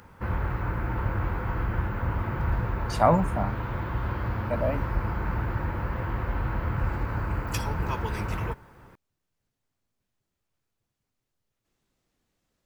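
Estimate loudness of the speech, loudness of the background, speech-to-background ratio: -27.0 LUFS, -30.5 LUFS, 3.5 dB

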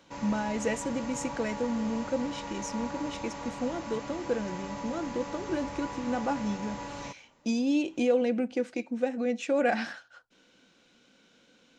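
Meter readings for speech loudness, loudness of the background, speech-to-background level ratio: -31.5 LUFS, -39.5 LUFS, 8.0 dB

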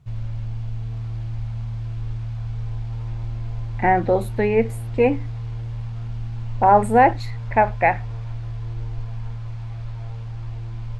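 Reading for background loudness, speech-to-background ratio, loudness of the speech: -31.0 LUFS, 12.0 dB, -19.0 LUFS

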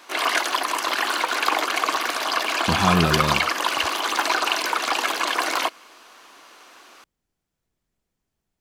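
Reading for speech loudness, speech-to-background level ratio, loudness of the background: -23.5 LUFS, -1.5 dB, -22.0 LUFS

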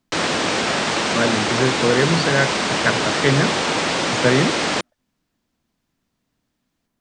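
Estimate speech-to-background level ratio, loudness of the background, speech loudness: -1.0 dB, -20.0 LUFS, -21.0 LUFS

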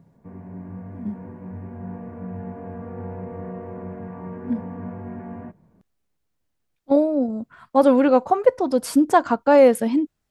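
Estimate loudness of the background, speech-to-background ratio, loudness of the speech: -35.5 LUFS, 17.0 dB, -18.5 LUFS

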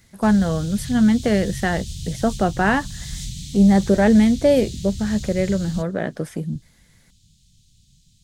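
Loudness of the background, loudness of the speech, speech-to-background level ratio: -33.0 LUFS, -19.5 LUFS, 13.5 dB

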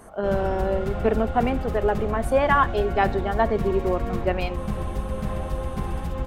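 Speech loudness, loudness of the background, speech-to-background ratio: -24.5 LUFS, -30.0 LUFS, 5.5 dB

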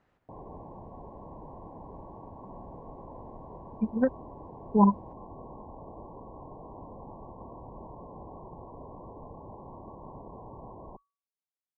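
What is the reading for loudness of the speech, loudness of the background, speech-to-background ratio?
-26.5 LUFS, -46.5 LUFS, 20.0 dB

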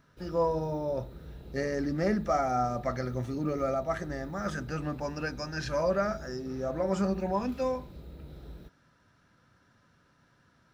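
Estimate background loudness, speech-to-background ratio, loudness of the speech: -48.0 LUFS, 16.0 dB, -32.0 LUFS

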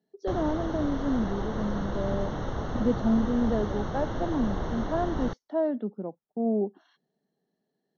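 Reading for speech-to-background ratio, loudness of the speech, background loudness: 4.0 dB, -30.0 LUFS, -34.0 LUFS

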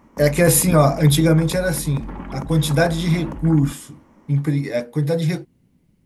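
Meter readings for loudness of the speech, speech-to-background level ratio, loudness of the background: -18.5 LUFS, 15.5 dB, -34.0 LUFS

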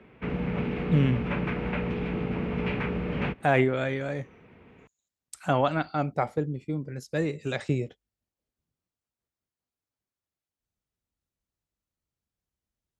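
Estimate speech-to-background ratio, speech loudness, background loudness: 2.0 dB, -28.5 LUFS, -30.5 LUFS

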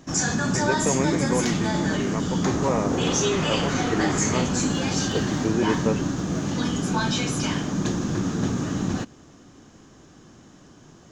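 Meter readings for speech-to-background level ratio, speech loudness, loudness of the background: -4.5 dB, -29.0 LUFS, -24.5 LUFS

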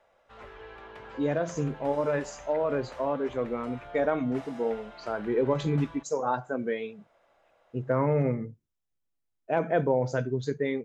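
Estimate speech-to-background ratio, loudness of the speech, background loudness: 16.5 dB, -29.5 LUFS, -46.0 LUFS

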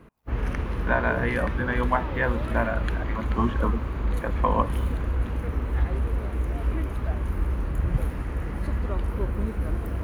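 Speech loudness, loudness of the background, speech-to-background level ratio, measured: -28.5 LUFS, -29.0 LUFS, 0.5 dB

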